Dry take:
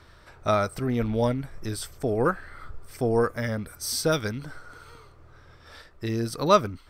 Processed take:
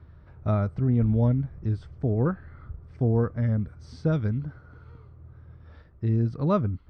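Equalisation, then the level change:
high-pass filter 56 Hz
bass and treble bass +14 dB, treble +4 dB
head-to-tape spacing loss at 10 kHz 43 dB
−4.5 dB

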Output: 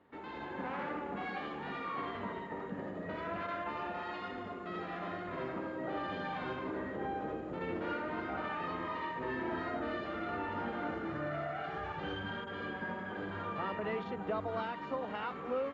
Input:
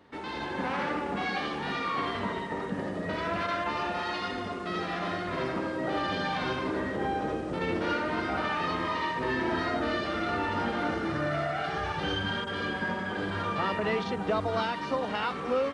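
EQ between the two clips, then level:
low-pass with resonance 7,000 Hz, resonance Q 13
high-frequency loss of the air 470 metres
low-shelf EQ 170 Hz −5.5 dB
−5.5 dB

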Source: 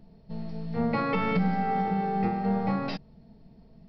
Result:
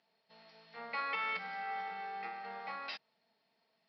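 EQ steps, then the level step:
Bessel high-pass filter 2,000 Hz, order 2
high-frequency loss of the air 140 metres
+2.0 dB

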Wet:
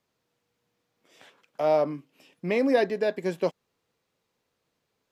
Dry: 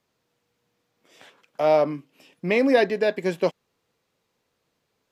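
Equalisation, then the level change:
dynamic equaliser 2,600 Hz, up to −4 dB, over −38 dBFS, Q 1
−3.5 dB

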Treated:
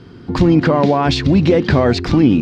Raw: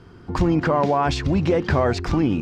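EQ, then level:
octave-band graphic EQ 125/250/500/2,000/4,000 Hz +6/+9/+4/+4/+10 dB
0.0 dB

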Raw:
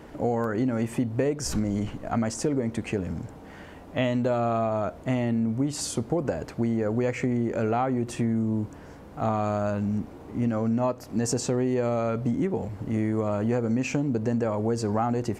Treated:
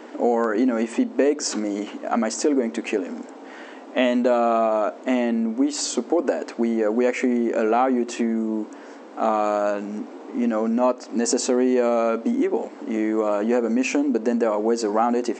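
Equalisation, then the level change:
linear-phase brick-wall band-pass 220–8,200 Hz
+6.5 dB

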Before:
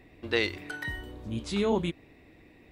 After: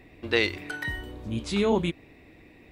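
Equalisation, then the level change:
parametric band 2,400 Hz +2.5 dB 0.3 octaves
+3.0 dB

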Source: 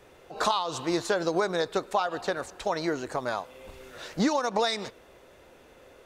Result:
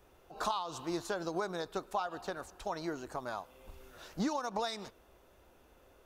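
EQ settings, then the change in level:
graphic EQ with 10 bands 125 Hz −8 dB, 250 Hz −5 dB, 500 Hz −10 dB, 1,000 Hz −3 dB, 2,000 Hz −11 dB, 4,000 Hz −7 dB, 8,000 Hz −8 dB
0.0 dB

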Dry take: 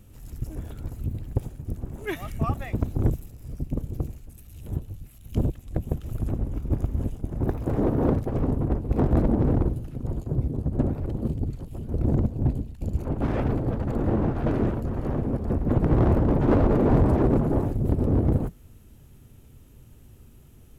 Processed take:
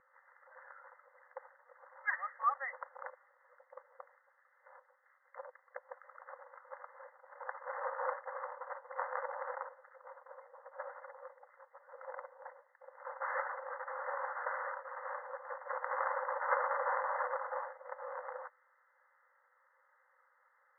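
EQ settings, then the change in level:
linear-phase brick-wall band-pass 500–2,100 Hz
high-frequency loss of the air 290 metres
phaser with its sweep stopped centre 1,600 Hz, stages 4
+6.0 dB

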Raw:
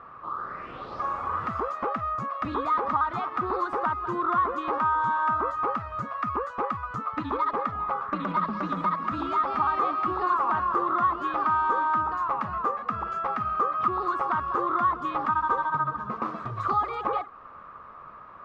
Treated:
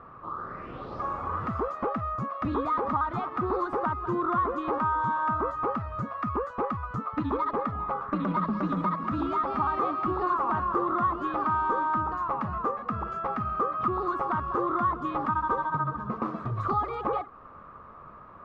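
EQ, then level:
tilt shelving filter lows +5.5 dB, about 640 Hz
0.0 dB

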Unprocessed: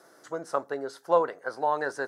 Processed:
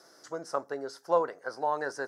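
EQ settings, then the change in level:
parametric band 5,200 Hz +11.5 dB 0.65 octaves
dynamic equaliser 3,900 Hz, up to −7 dB, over −51 dBFS, Q 1.2
−3.0 dB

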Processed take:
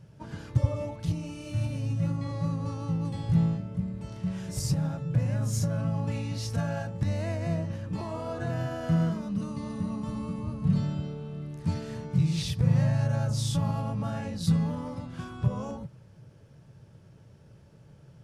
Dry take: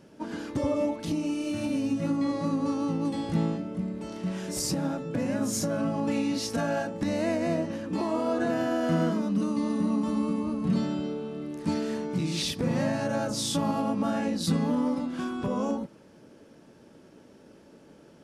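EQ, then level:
low shelf with overshoot 180 Hz +13 dB, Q 3
−5.5 dB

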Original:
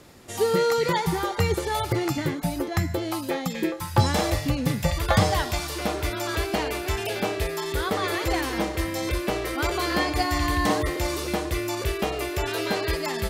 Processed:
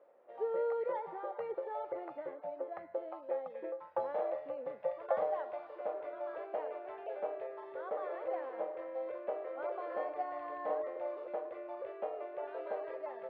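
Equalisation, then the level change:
four-pole ladder band-pass 600 Hz, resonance 70%
high-frequency loss of the air 360 metres
low-shelf EQ 460 Hz −9.5 dB
+1.5 dB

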